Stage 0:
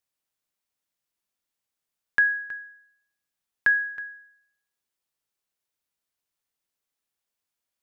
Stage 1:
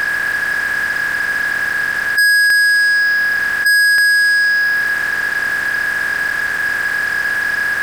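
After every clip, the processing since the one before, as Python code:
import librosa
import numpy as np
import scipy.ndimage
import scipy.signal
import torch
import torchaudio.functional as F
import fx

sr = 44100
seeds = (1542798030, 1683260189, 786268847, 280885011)

y = fx.bin_compress(x, sr, power=0.2)
y = fx.leveller(y, sr, passes=5)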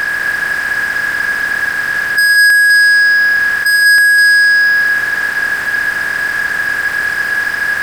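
y = x + 10.0 ** (-7.5 / 20.0) * np.pad(x, (int(200 * sr / 1000.0), 0))[:len(x)]
y = y * librosa.db_to_amplitude(1.5)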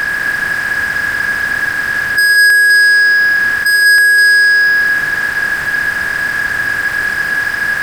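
y = fx.octave_divider(x, sr, octaves=2, level_db=1.0)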